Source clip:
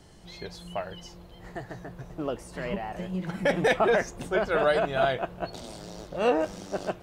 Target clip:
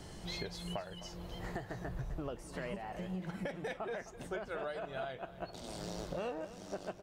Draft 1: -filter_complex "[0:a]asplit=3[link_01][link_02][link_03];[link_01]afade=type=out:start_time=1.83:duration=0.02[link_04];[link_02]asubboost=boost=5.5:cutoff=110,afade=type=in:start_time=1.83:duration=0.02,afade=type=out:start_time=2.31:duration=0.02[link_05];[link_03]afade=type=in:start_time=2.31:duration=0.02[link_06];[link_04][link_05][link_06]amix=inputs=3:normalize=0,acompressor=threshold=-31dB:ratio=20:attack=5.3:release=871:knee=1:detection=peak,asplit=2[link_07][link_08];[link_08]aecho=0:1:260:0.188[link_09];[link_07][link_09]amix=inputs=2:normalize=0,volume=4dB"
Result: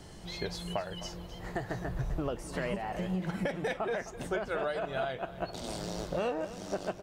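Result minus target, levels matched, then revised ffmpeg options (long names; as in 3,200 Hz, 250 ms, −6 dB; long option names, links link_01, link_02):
downward compressor: peak gain reduction −7 dB
-filter_complex "[0:a]asplit=3[link_01][link_02][link_03];[link_01]afade=type=out:start_time=1.83:duration=0.02[link_04];[link_02]asubboost=boost=5.5:cutoff=110,afade=type=in:start_time=1.83:duration=0.02,afade=type=out:start_time=2.31:duration=0.02[link_05];[link_03]afade=type=in:start_time=2.31:duration=0.02[link_06];[link_04][link_05][link_06]amix=inputs=3:normalize=0,acompressor=threshold=-38.5dB:ratio=20:attack=5.3:release=871:knee=1:detection=peak,asplit=2[link_07][link_08];[link_08]aecho=0:1:260:0.188[link_09];[link_07][link_09]amix=inputs=2:normalize=0,volume=4dB"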